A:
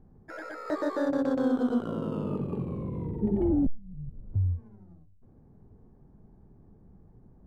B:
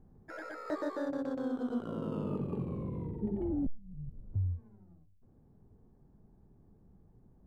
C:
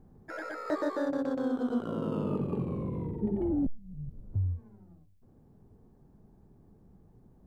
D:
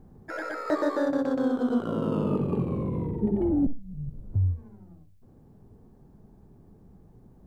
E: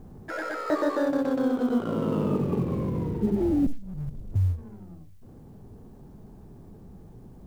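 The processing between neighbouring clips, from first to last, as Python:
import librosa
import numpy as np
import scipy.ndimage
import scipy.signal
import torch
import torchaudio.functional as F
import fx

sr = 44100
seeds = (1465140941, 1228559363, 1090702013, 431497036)

y1 = fx.rider(x, sr, range_db=3, speed_s=0.5)
y1 = y1 * librosa.db_to_amplitude(-6.5)
y2 = fx.low_shelf(y1, sr, hz=120.0, db=-4.0)
y2 = y2 * librosa.db_to_amplitude(5.0)
y3 = fx.echo_feedback(y2, sr, ms=63, feedback_pct=21, wet_db=-16.0)
y3 = y3 * librosa.db_to_amplitude(5.0)
y4 = fx.law_mismatch(y3, sr, coded='mu')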